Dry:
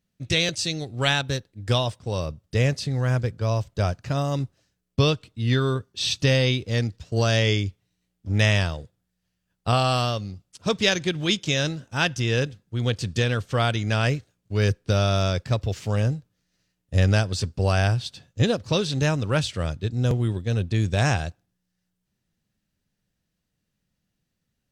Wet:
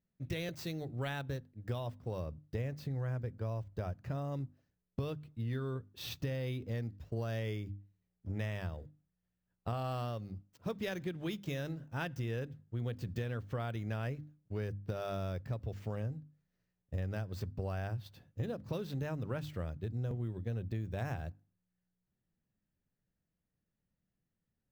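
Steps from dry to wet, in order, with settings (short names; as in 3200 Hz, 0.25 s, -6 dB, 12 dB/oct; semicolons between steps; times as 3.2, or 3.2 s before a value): median filter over 5 samples; bell 4600 Hz -12 dB 2.9 oct; notches 50/100/150/200/250/300 Hz; compressor, threshold -28 dBFS, peak gain reduction 11.5 dB; bell 1900 Hz +3 dB 0.63 oct; gain -6.5 dB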